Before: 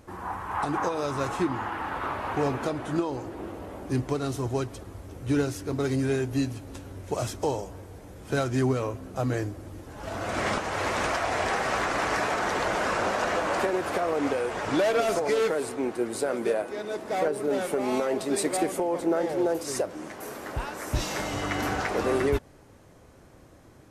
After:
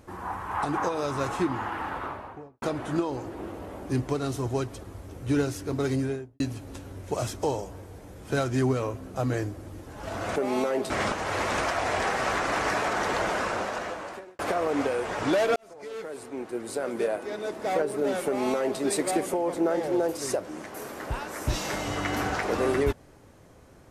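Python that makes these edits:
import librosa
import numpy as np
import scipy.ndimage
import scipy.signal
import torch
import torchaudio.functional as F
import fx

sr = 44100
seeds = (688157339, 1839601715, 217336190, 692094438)

y = fx.studio_fade_out(x, sr, start_s=1.79, length_s=0.83)
y = fx.studio_fade_out(y, sr, start_s=5.9, length_s=0.5)
y = fx.edit(y, sr, fx.fade_out_span(start_s=12.69, length_s=1.16),
    fx.fade_in_span(start_s=15.02, length_s=1.72),
    fx.duplicate(start_s=17.72, length_s=0.54, to_s=10.36), tone=tone)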